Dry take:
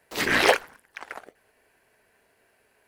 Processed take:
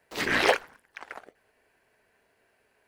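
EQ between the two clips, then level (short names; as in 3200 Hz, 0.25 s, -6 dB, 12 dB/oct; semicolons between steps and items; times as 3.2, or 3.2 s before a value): bell 13000 Hz -6 dB 1.2 oct; -3.0 dB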